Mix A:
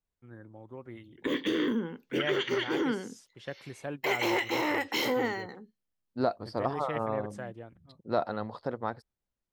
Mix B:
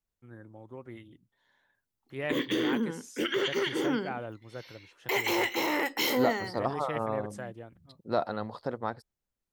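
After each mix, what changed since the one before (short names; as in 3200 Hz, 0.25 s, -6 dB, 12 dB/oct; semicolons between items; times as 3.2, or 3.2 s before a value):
background: entry +1.05 s; master: add high shelf 6800 Hz +9 dB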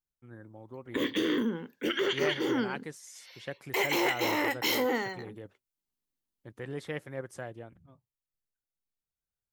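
second voice: muted; background: entry -1.35 s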